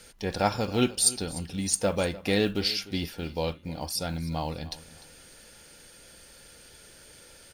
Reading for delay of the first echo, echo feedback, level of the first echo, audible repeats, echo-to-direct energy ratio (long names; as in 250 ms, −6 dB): 299 ms, 28%, −18.0 dB, 2, −17.5 dB